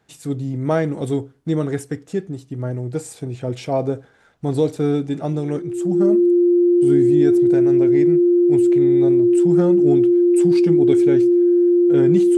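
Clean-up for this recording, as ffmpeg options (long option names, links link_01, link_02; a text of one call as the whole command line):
ffmpeg -i in.wav -af "bandreject=frequency=350:width=30" out.wav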